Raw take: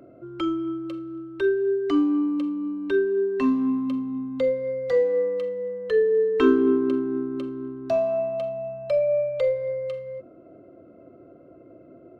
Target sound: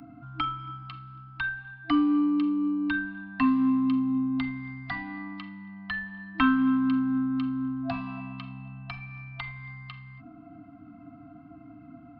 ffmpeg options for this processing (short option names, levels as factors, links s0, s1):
-filter_complex "[0:a]aresample=11025,aresample=44100,afftfilt=real='re*(1-between(b*sr/4096,320,670))':imag='im*(1-between(b*sr/4096,320,670))':win_size=4096:overlap=0.75,acrossover=split=240|960|3200[s0][s1][s2][s3];[s0]acompressor=threshold=0.0316:ratio=4[s4];[s1]acompressor=threshold=0.0141:ratio=4[s5];[s3]acompressor=threshold=0.00126:ratio=4[s6];[s4][s5][s2][s6]amix=inputs=4:normalize=0,volume=1.88"